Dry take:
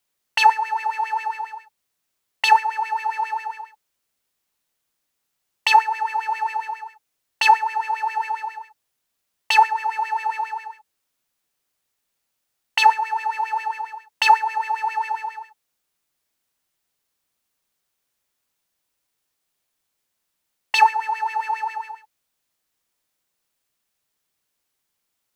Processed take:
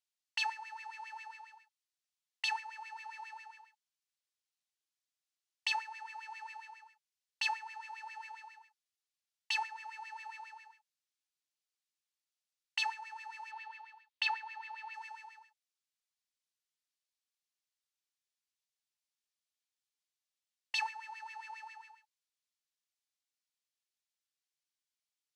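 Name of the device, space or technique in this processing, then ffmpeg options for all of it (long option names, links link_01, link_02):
piezo pickup straight into a mixer: -filter_complex "[0:a]lowpass=5000,aderivative,asettb=1/sr,asplit=3[link_01][link_02][link_03];[link_01]atrim=end=13.514[link_04];[link_02]atrim=start=13.51:end=14.94,asetpts=PTS-STARTPTS,afade=type=in:duration=0.004:curve=qsin,afade=type=out:start_time=1.426:duration=0.004:curve=qsin,highshelf=frequency=5000:width_type=q:width=1.5:gain=-8[link_05];[link_03]atrim=start=14.936[link_06];[link_04][link_05]acrossfade=duration=0.004:curve1=hsin:curve2=qsin[link_07];[link_07][link_06]acrossfade=duration=0.004:curve1=qsin:curve2=hsin,volume=-6dB"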